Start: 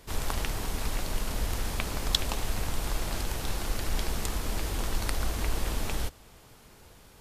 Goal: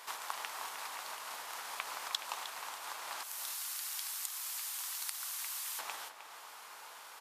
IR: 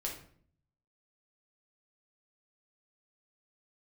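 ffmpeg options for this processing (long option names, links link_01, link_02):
-filter_complex "[0:a]asettb=1/sr,asplit=3[link_01][link_02][link_03];[link_01]atrim=end=3.234[link_04];[link_02]atrim=start=3.23:end=5.79,asetpts=PTS-STARTPTS,afade=type=in:duration=0.004:curve=qsin,afade=type=out:start_time=2.556:duration=0.004:curve=qsin,aderivative[link_05];[link_03]atrim=start=5.786[link_06];[link_04][link_05]acrossfade=duration=0.004:curve1=hsin:curve2=qsin[link_07];[link_07][link_06]acrossfade=duration=0.004:curve1=qsin:curve2=hsin,acompressor=threshold=-44dB:ratio=2.5,highpass=frequency=990:width_type=q:width=1.9,asplit=2[link_08][link_09];[link_09]adelay=309,volume=-9dB,highshelf=frequency=4000:gain=-6.95[link_10];[link_08][link_10]amix=inputs=2:normalize=0,volume=4.5dB"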